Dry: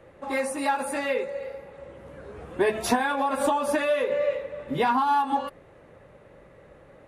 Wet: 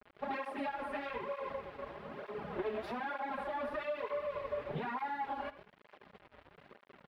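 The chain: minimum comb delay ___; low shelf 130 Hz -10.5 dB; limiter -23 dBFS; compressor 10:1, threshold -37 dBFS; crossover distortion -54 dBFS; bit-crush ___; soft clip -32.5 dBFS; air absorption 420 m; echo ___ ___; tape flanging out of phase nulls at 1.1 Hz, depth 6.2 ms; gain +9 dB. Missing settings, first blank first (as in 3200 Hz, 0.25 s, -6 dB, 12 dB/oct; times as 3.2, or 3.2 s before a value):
4.9 ms, 9-bit, 74 ms, -14 dB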